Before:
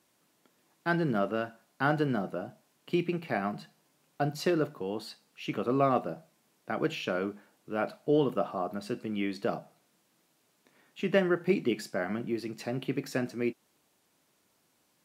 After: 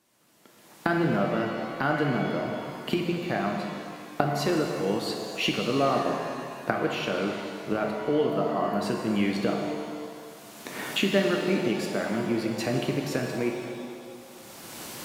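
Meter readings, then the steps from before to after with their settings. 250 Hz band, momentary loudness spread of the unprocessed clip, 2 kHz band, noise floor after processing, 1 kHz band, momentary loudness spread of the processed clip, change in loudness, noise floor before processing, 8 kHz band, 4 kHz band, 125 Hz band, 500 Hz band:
+4.5 dB, 12 LU, +5.0 dB, -52 dBFS, +4.5 dB, 14 LU, +4.0 dB, -72 dBFS, +10.0 dB, +10.0 dB, +4.0 dB, +3.5 dB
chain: recorder AGC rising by 22 dB/s; pitch-shifted reverb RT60 2.2 s, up +7 st, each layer -8 dB, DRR 1.5 dB

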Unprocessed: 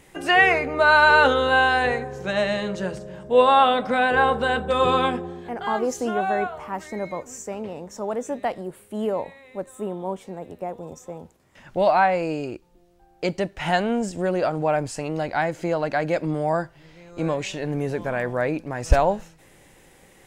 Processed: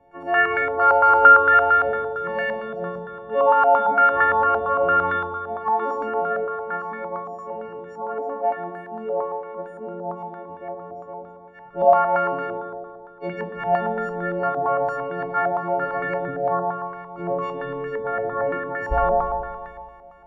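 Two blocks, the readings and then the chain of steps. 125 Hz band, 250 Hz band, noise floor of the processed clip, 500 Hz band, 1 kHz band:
-6.5 dB, -7.0 dB, -43 dBFS, 0.0 dB, +3.0 dB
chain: partials quantised in pitch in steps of 4 st; spring tank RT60 2.1 s, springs 34/53 ms, chirp 50 ms, DRR 0.5 dB; step-sequenced low-pass 8.8 Hz 750–1600 Hz; trim -8 dB

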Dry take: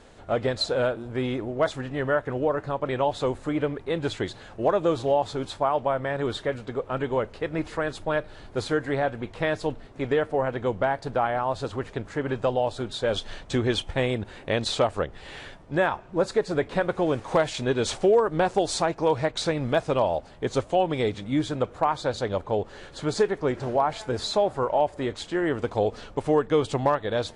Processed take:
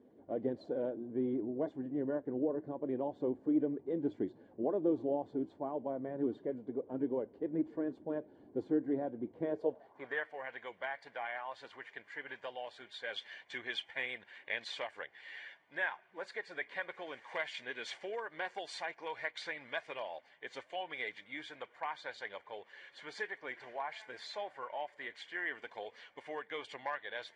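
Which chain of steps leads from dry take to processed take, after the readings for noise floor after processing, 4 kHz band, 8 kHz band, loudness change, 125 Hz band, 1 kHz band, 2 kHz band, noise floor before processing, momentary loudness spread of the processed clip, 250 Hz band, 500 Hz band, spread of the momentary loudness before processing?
-65 dBFS, -13.5 dB, -22.0 dB, -13.0 dB, -22.0 dB, -16.5 dB, -7.5 dB, -47 dBFS, 11 LU, -9.0 dB, -15.0 dB, 7 LU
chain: coarse spectral quantiser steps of 15 dB; comb of notches 1.3 kHz; band-pass sweep 290 Hz -> 2.1 kHz, 9.41–10.30 s; trim -1.5 dB

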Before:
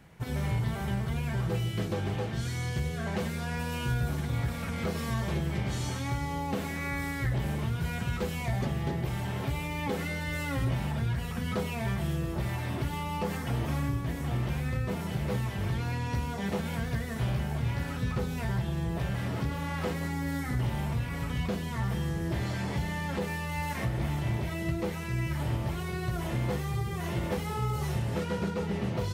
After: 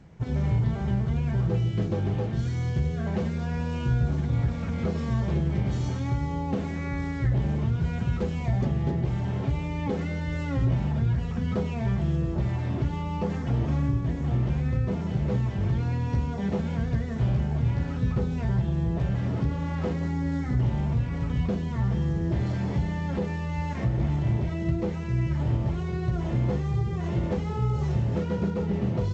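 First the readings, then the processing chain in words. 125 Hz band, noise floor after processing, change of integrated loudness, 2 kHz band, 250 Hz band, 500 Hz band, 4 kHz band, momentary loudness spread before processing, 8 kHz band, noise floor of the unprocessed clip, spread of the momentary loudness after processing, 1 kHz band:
+5.5 dB, -31 dBFS, +4.5 dB, -4.0 dB, +5.0 dB, +2.5 dB, -5.5 dB, 2 LU, no reading, -35 dBFS, 3 LU, -1.0 dB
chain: tilt shelf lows +6 dB, about 750 Hz; G.722 64 kbps 16 kHz

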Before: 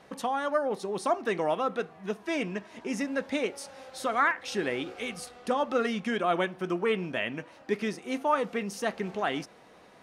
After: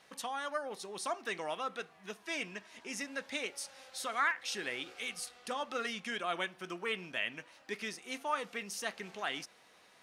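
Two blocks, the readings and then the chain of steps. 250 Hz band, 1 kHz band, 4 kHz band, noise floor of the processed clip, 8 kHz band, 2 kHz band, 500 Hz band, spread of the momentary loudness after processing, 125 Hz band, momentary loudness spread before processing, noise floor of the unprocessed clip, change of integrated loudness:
-14.0 dB, -8.5 dB, -1.0 dB, -63 dBFS, +0.5 dB, -4.0 dB, -12.0 dB, 8 LU, -14.5 dB, 9 LU, -55 dBFS, -7.5 dB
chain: tilt shelf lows -8 dB, about 1.2 kHz; trim -7 dB

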